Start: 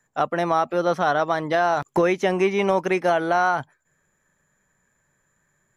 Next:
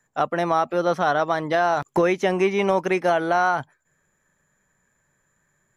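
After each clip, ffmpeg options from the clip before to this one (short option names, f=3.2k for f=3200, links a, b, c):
-af anull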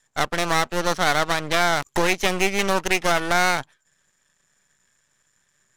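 -af "aeval=exprs='max(val(0),0)':c=same,adynamicsmooth=sensitivity=7.5:basefreq=6.3k,crystalizer=i=6.5:c=0"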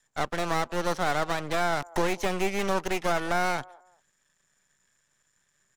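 -filter_complex "[0:a]acrossover=split=410|1100[a][b][c];[b]aecho=1:1:195|390:0.119|0.0333[d];[c]asoftclip=type=tanh:threshold=-24.5dB[e];[a][d][e]amix=inputs=3:normalize=0,volume=-4.5dB"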